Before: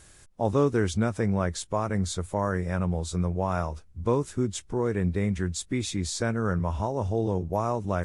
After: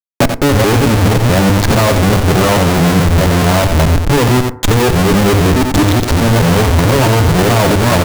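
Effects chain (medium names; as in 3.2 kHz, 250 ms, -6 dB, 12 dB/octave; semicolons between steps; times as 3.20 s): time reversed locally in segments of 214 ms; spectral gate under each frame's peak -10 dB strong; low-pass 1.1 kHz 6 dB/octave; peaking EQ 250 Hz +6 dB 2.6 oct; hum notches 50/100 Hz; comb 7.4 ms, depth 51%; compression 8:1, threshold -29 dBFS, peak gain reduction 16.5 dB; Schmitt trigger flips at -46.5 dBFS; delay 88 ms -8.5 dB; FDN reverb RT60 0.8 s, high-frequency decay 0.3×, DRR 15.5 dB; loudness maximiser +31.5 dB; trim -4.5 dB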